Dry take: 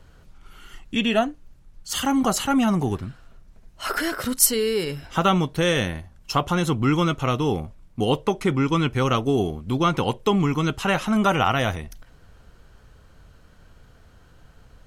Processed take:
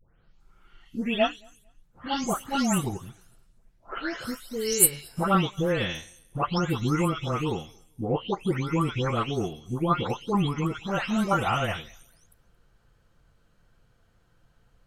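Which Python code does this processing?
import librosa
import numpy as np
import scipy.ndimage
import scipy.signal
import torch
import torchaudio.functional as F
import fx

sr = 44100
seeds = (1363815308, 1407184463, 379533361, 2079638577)

y = fx.spec_delay(x, sr, highs='late', ms=400)
y = fx.echo_feedback(y, sr, ms=225, feedback_pct=23, wet_db=-23.0)
y = fx.upward_expand(y, sr, threshold_db=-35.0, expansion=1.5)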